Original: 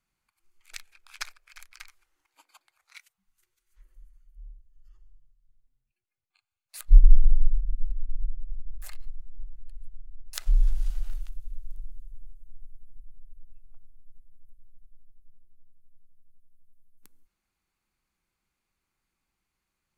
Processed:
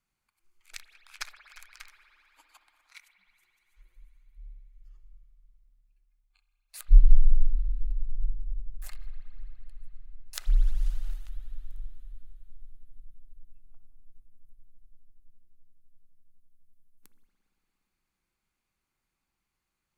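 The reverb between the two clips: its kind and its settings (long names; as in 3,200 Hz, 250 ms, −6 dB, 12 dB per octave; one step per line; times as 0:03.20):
spring reverb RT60 3.9 s, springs 58 ms, chirp 25 ms, DRR 8.5 dB
level −2 dB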